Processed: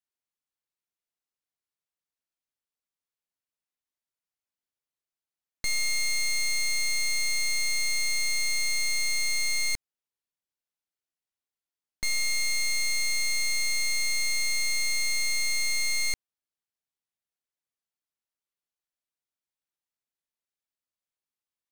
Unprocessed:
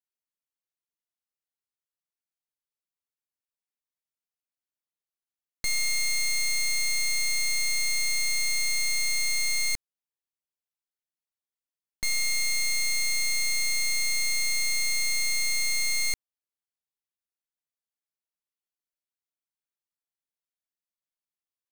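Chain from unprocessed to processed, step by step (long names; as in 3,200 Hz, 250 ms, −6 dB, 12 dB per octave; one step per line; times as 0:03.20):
high-shelf EQ 11,000 Hz −6 dB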